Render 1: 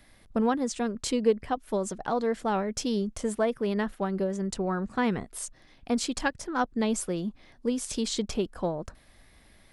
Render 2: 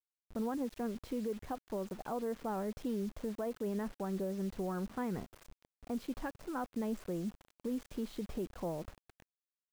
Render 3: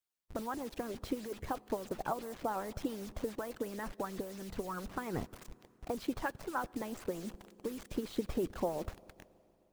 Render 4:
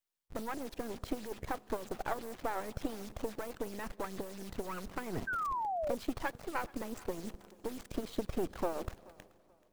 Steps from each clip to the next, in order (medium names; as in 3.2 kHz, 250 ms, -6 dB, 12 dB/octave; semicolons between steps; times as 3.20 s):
Bessel low-pass 1.2 kHz, order 2; peak limiter -23.5 dBFS, peak gain reduction 11 dB; word length cut 8-bit, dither none; trim -6 dB
reverberation RT60 3.1 s, pre-delay 10 ms, DRR 17 dB; harmonic-percussive split harmonic -16 dB; trim +8 dB
partial rectifier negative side -12 dB; thinning echo 431 ms, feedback 30%, level -22 dB; painted sound fall, 5.27–5.95 s, 520–1600 Hz -38 dBFS; trim +3 dB